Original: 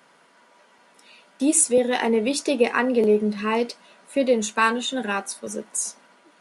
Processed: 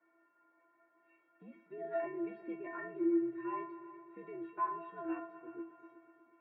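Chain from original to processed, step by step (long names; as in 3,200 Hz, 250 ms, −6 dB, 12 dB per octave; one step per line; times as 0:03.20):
low-shelf EQ 360 Hz +9.5 dB
brickwall limiter −11.5 dBFS, peak gain reduction 8.5 dB
single-sideband voice off tune −81 Hz 340–2,200 Hz
stiff-string resonator 330 Hz, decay 0.42 s, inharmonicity 0.008
echo machine with several playback heads 122 ms, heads all three, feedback 53%, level −20 dB
level +1 dB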